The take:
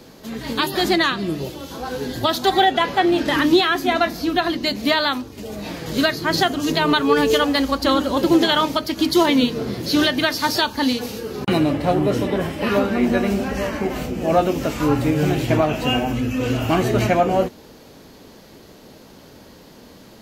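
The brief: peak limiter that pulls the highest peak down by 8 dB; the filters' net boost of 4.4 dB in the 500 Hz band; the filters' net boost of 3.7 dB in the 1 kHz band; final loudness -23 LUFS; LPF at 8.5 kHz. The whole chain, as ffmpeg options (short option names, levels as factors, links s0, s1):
-af "lowpass=8500,equalizer=f=500:t=o:g=5,equalizer=f=1000:t=o:g=3,volume=0.631,alimiter=limit=0.237:level=0:latency=1"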